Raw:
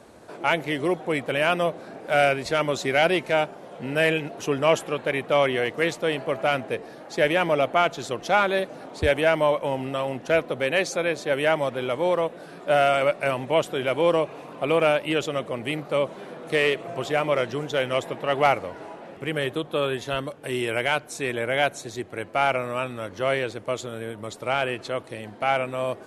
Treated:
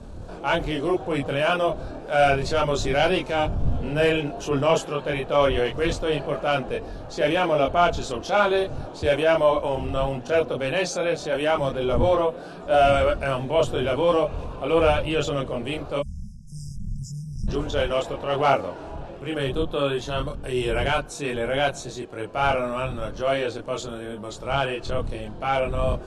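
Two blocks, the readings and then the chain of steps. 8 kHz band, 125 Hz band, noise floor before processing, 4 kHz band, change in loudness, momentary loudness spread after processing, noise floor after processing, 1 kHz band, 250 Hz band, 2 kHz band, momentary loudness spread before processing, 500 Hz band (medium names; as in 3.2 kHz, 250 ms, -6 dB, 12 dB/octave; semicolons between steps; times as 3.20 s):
+0.5 dB, +4.5 dB, -43 dBFS, 0.0 dB, +0.5 dB, 13 LU, -38 dBFS, +1.0 dB, +1.5 dB, -3.0 dB, 10 LU, +1.0 dB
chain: wind noise 100 Hz -36 dBFS; low-pass 8.1 kHz 12 dB/octave; peaking EQ 2 kHz -10.5 dB 0.38 oct; spectral selection erased 15.99–17.48 s, 220–4900 Hz; chorus voices 4, 0.3 Hz, delay 25 ms, depth 4.3 ms; transient shaper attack -4 dB, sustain +1 dB; trim +5 dB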